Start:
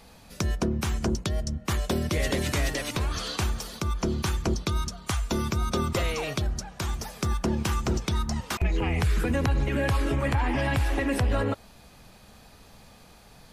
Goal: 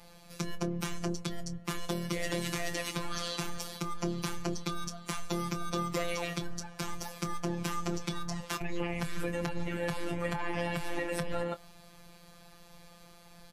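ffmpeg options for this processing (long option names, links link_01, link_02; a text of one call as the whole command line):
ffmpeg -i in.wav -filter_complex "[0:a]alimiter=limit=-20.5dB:level=0:latency=1:release=54,afftfilt=real='hypot(re,im)*cos(PI*b)':imag='0':win_size=1024:overlap=0.75,asplit=2[link_01][link_02];[link_02]adelay=25,volume=-12.5dB[link_03];[link_01][link_03]amix=inputs=2:normalize=0" out.wav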